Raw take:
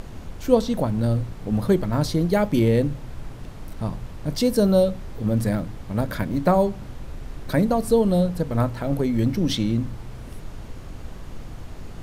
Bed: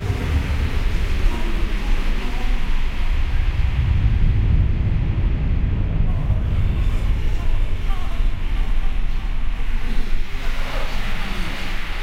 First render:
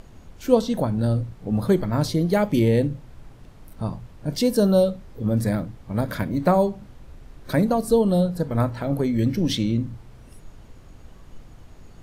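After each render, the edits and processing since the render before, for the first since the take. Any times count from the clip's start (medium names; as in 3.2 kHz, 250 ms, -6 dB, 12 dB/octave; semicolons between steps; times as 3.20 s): noise print and reduce 9 dB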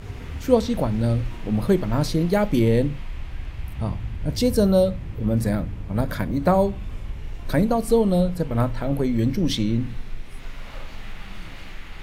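add bed -13 dB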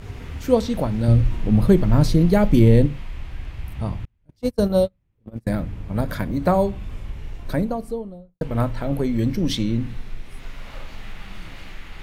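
1.08–2.86 s: bass shelf 230 Hz +9.5 dB; 4.05–5.47 s: gate -18 dBFS, range -37 dB; 7.20–8.41 s: studio fade out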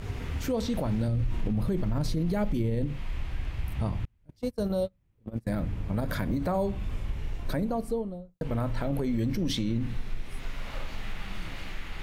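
compression 1.5:1, threshold -26 dBFS, peak gain reduction 6.5 dB; peak limiter -20.5 dBFS, peak gain reduction 11.5 dB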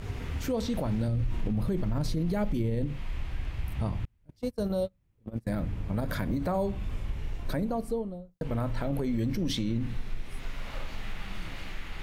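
trim -1 dB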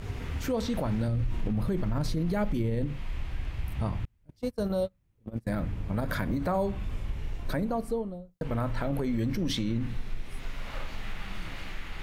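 dynamic bell 1.4 kHz, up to +4 dB, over -46 dBFS, Q 0.9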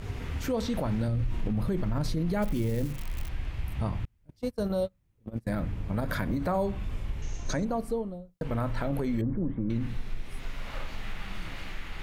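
2.42–3.29 s: zero-crossing glitches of -31 dBFS; 7.22–7.65 s: resonant low-pass 6.4 kHz, resonance Q 15; 9.21–9.70 s: Bessel low-pass 910 Hz, order 6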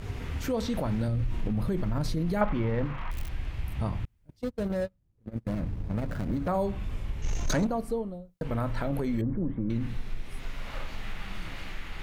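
2.41–3.11 s: FFT filter 400 Hz 0 dB, 1.1 kHz +15 dB, 3.3 kHz -1 dB, 9.7 kHz -30 dB; 4.44–6.48 s: median filter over 41 samples; 7.24–7.67 s: waveshaping leveller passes 2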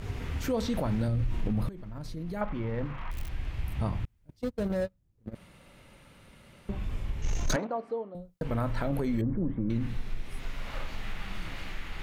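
1.69–3.62 s: fade in, from -16.5 dB; 5.35–6.69 s: room tone; 7.56–8.15 s: band-pass 400–2400 Hz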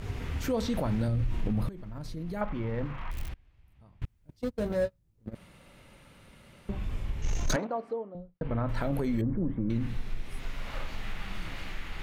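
3.30–4.02 s: inverted gate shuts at -29 dBFS, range -27 dB; 4.59–5.29 s: doubling 18 ms -6 dB; 7.93–8.69 s: distance through air 330 m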